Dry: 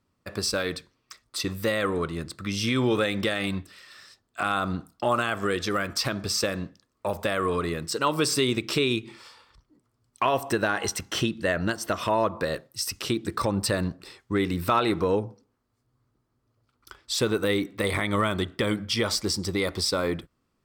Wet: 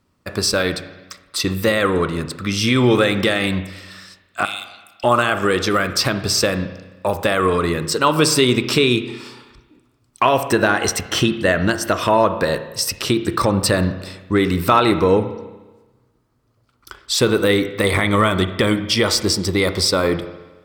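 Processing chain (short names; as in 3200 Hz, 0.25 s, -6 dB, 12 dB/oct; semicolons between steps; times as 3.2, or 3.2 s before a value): 4.45–5.04 brick-wall FIR high-pass 2000 Hz; spring tank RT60 1.2 s, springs 32/58 ms, chirp 55 ms, DRR 10.5 dB; gain +8.5 dB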